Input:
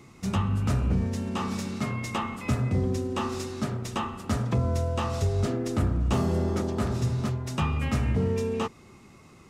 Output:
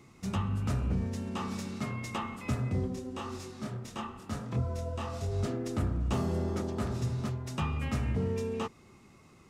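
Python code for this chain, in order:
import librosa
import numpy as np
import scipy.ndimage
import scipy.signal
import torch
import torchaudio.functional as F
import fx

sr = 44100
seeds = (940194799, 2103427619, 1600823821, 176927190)

y = fx.chorus_voices(x, sr, voices=2, hz=1.2, base_ms=25, depth_ms=3.1, mix_pct=45, at=(2.86, 5.31), fade=0.02)
y = y * librosa.db_to_amplitude(-5.5)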